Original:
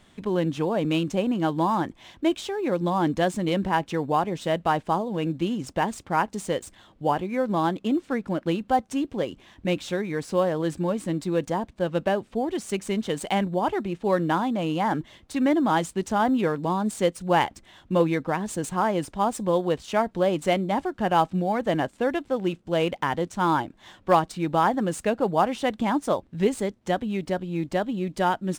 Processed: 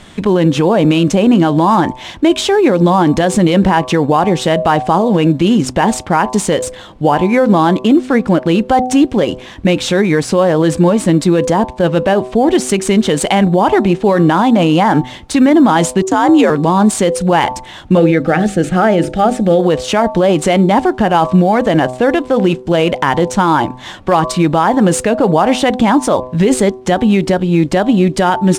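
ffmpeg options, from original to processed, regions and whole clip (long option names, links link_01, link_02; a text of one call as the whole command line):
ffmpeg -i in.wav -filter_complex "[0:a]asettb=1/sr,asplit=3[link_01][link_02][link_03];[link_01]atrim=end=16.024[link_04];[link_02]atrim=start=16.02:end=16.5,asetpts=PTS-STARTPTS,afade=type=in:duration=0.004:curve=qsin,afade=type=out:start_time=0.476:duration=0.004:curve=qsin,agate=range=-33dB:threshold=-32dB:ratio=3:release=100:detection=peak,equalizer=frequency=6900:width_type=o:width=0.24:gain=9.5,afreqshift=59[link_05];[link_03]atrim=start=16.496[link_06];[link_04][link_05]acrossfade=duration=0.004:curve1=hsin:curve2=qsin[link_07];[link_07][link_06]acrossfade=duration=0.004:curve1=qsin:curve2=hsin,asettb=1/sr,asplit=3[link_08][link_09][link_10];[link_08]atrim=end=17.974[link_11];[link_09]atrim=start=17.97:end=19.6,asetpts=PTS-STARTPTS,afade=type=in:duration=0.004:curve=qsin,afade=type=out:start_time=1.626:duration=0.004:curve=qsin,acrossover=split=2900[link_12][link_13];[link_13]acompressor=threshold=-49dB:ratio=4:attack=1:release=60[link_14];[link_12][link_14]amix=inputs=2:normalize=0,asuperstop=centerf=1000:order=4:qfactor=2.6,bandreject=frequency=50:width_type=h:width=6,bandreject=frequency=100:width_type=h:width=6,bandreject=frequency=150:width_type=h:width=6,bandreject=frequency=200:width_type=h:width=6,bandreject=frequency=250:width_type=h:width=6,bandreject=frequency=300:width_type=h:width=6,bandreject=frequency=350:width_type=h:width=6,bandreject=frequency=400:width_type=h:width=6[link_15];[link_10]atrim=start=19.596[link_16];[link_11][link_15]acrossfade=duration=0.004:curve1=hsin:curve2=qsin[link_17];[link_17][link_16]acrossfade=duration=0.004:curve1=qsin:curve2=hsin,lowpass=12000,bandreject=frequency=126.6:width_type=h:width=4,bandreject=frequency=253.2:width_type=h:width=4,bandreject=frequency=379.8:width_type=h:width=4,bandreject=frequency=506.4:width_type=h:width=4,bandreject=frequency=633:width_type=h:width=4,bandreject=frequency=759.6:width_type=h:width=4,bandreject=frequency=886.2:width_type=h:width=4,bandreject=frequency=1012.8:width_type=h:width=4,bandreject=frequency=1139.4:width_type=h:width=4,alimiter=level_in=19.5dB:limit=-1dB:release=50:level=0:latency=1,volume=-1dB" out.wav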